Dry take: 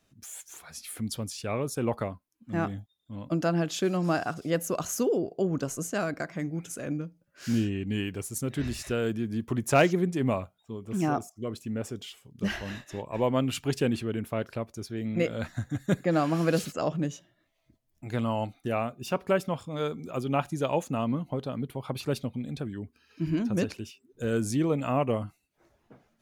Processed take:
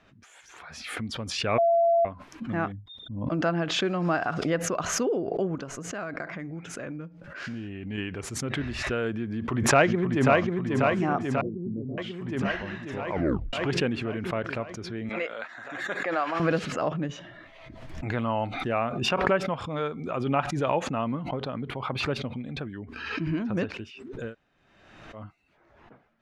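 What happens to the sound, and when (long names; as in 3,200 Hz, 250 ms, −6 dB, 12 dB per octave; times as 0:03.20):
0:01.58–0:02.05: beep over 677 Hz −19 dBFS
0:02.72–0:03.27: spectral envelope exaggerated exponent 2
0:05.55–0:07.98: downward compressor 5 to 1, threshold −31 dBFS
0:09.32–0:10.40: delay throw 540 ms, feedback 70%, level −2.5 dB
0:11.41–0:11.98: inverse Chebyshev low-pass filter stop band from 1,700 Hz, stop band 70 dB
0:13.10: tape stop 0.43 s
0:15.09–0:16.40: high-pass filter 610 Hz
0:17.09–0:19.09: envelope flattener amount 50%
0:24.27–0:25.21: fill with room tone, crossfade 0.16 s
whole clip: low-pass filter 1,700 Hz 12 dB per octave; tilt shelving filter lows −6.5 dB, about 1,100 Hz; background raised ahead of every attack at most 45 dB per second; level +4 dB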